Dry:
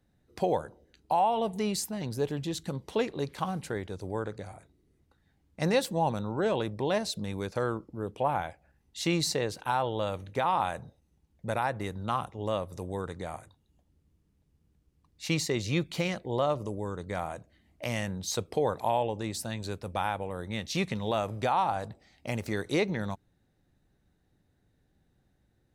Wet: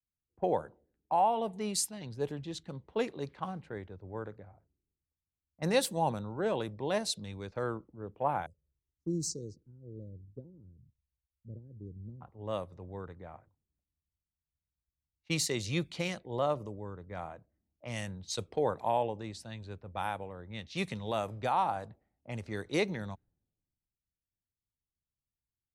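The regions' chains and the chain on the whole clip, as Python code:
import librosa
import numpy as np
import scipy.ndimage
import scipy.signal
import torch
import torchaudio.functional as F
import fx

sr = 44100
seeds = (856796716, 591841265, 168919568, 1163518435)

y = fx.chain(x, sr, fx.cheby2_bandstop(low_hz=710.0, high_hz=3400.0, order=4, stop_db=40),
    fx.env_phaser(low_hz=210.0, high_hz=2300.0, full_db=-31.5), at=(8.46, 12.21))
y = fx.dynamic_eq(y, sr, hz=9700.0, q=2.1, threshold_db=-57.0, ratio=4.0, max_db=5)
y = fx.env_lowpass(y, sr, base_hz=560.0, full_db=-26.0)
y = fx.band_widen(y, sr, depth_pct=70)
y = y * librosa.db_to_amplitude(-5.0)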